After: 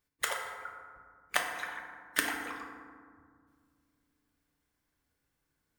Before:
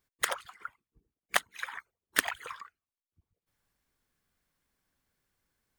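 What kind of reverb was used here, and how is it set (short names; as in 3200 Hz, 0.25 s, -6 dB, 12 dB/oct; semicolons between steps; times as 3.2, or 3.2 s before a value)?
FDN reverb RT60 1.9 s, low-frequency decay 1.5×, high-frequency decay 0.4×, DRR 0.5 dB; gain -3.5 dB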